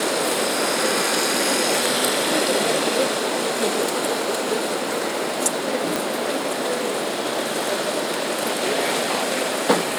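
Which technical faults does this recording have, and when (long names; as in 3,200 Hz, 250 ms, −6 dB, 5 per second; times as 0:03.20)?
0:05.96: click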